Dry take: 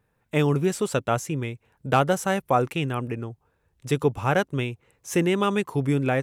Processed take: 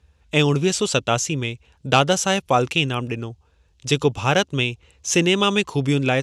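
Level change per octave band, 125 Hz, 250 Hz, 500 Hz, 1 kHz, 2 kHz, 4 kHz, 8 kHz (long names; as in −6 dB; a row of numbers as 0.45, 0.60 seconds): +3.0, +3.0, +3.0, +3.0, +7.0, +13.5, +11.0 decibels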